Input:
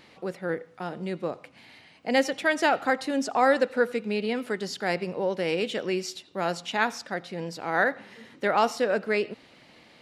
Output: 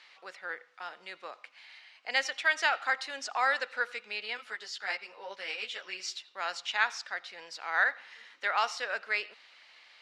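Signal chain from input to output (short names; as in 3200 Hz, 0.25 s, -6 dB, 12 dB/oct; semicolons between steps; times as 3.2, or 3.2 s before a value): Butterworth band-pass 2800 Hz, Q 0.52; 4.37–6 ensemble effect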